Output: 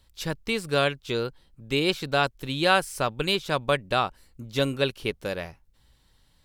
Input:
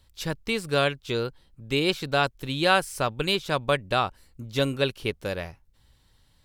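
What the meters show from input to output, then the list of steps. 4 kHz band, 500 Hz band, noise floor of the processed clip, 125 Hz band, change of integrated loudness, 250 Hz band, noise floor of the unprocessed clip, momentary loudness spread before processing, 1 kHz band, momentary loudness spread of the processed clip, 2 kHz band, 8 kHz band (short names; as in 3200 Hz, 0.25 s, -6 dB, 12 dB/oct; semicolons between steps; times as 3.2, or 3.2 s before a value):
0.0 dB, 0.0 dB, -63 dBFS, -1.0 dB, 0.0 dB, 0.0 dB, -63 dBFS, 10 LU, 0.0 dB, 10 LU, 0.0 dB, 0.0 dB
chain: bell 95 Hz -6 dB 0.43 oct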